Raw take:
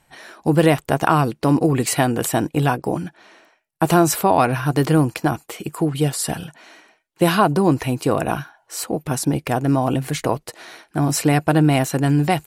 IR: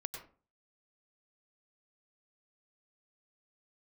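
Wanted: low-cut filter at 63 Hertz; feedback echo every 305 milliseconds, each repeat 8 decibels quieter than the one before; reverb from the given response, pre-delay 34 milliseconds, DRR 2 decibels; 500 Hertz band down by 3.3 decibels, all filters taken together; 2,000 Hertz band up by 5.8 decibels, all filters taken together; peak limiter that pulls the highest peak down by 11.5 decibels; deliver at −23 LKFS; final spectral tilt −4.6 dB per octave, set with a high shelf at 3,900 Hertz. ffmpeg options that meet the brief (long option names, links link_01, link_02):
-filter_complex "[0:a]highpass=63,equalizer=frequency=500:width_type=o:gain=-5,equalizer=frequency=2000:width_type=o:gain=7,highshelf=frequency=3900:gain=4,alimiter=limit=-10.5dB:level=0:latency=1,aecho=1:1:305|610|915|1220|1525:0.398|0.159|0.0637|0.0255|0.0102,asplit=2[link_01][link_02];[1:a]atrim=start_sample=2205,adelay=34[link_03];[link_02][link_03]afir=irnorm=-1:irlink=0,volume=-1dB[link_04];[link_01][link_04]amix=inputs=2:normalize=0,volume=-3dB"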